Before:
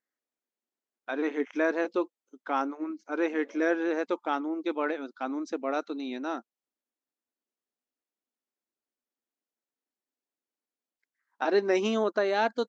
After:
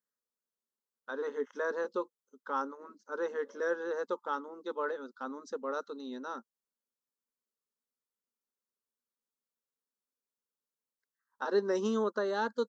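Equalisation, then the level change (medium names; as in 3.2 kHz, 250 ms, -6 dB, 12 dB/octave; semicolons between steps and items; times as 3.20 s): static phaser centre 470 Hz, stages 8; -2.0 dB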